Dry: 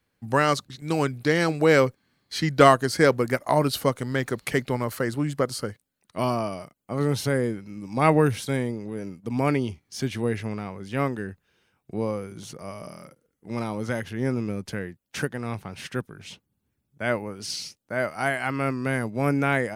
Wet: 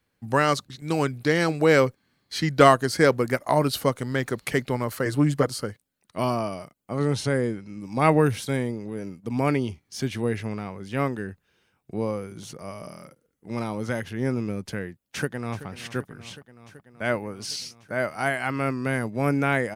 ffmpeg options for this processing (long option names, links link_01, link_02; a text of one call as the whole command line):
ffmpeg -i in.wav -filter_complex "[0:a]asettb=1/sr,asplit=3[link_01][link_02][link_03];[link_01]atrim=end=5.054[link_04];[link_02]atrim=start=5.05:end=5.47,asetpts=PTS-STARTPTS,afade=type=in:duration=0.004:curve=qsin,afade=type=out:start_time=0.416:duration=0.004:curve=qsin,aecho=1:1:6.7:0.96,atrim=end_sample=18522[link_05];[link_03]atrim=start=5.466[link_06];[link_04][link_05]acrossfade=duration=0.004:curve1=hsin:curve2=qsin[link_07];[link_07][link_06]acrossfade=duration=0.004:curve1=qsin:curve2=hsin,asettb=1/sr,asplit=3[link_08][link_09][link_10];[link_08]atrim=end=6.974[link_11];[link_09]atrim=start=6.97:end=7.81,asetpts=PTS-STARTPTS,afade=type=in:duration=0.004:curve=qsin,afade=type=out:start_time=0.836:duration=0.004:curve=qsin,lowpass=frequency=10000:width=0.5412,lowpass=frequency=10000:width=1.3066[link_12];[link_10]atrim=start=7.806[link_13];[link_11][link_12]acrossfade=duration=0.004:curve1=hsin:curve2=qsin[link_14];[link_14][link_13]acrossfade=duration=0.004:curve1=qsin:curve2=hsin,asplit=2[link_15][link_16];[link_16]afade=type=in:start_time=15.02:duration=0.01,afade=type=out:start_time=15.66:duration=0.01,aecho=0:1:380|760|1140|1520|1900|2280|2660|3040|3420|3800|4180|4560:0.177828|0.142262|0.11381|0.0910479|0.0728383|0.0582707|0.0466165|0.0372932|0.0298346|0.0238677|0.0190941|0.0152753[link_17];[link_15][link_17]amix=inputs=2:normalize=0" out.wav